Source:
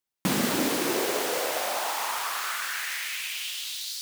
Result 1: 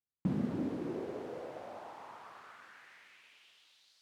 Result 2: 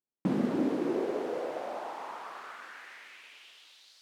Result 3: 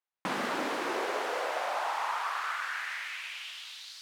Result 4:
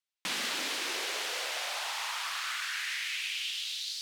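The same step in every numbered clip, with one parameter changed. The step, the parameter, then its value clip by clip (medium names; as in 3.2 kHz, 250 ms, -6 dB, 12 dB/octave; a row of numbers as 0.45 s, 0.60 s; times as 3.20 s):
band-pass filter, frequency: 100 Hz, 280 Hz, 1.1 kHz, 3.2 kHz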